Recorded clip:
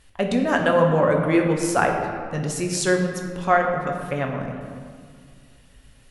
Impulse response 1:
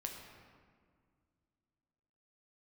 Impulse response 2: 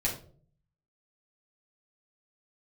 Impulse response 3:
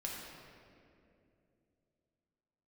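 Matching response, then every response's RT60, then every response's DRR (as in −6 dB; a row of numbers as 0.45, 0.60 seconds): 1; 2.0, 0.50, 2.7 seconds; 1.5, −5.0, −3.5 decibels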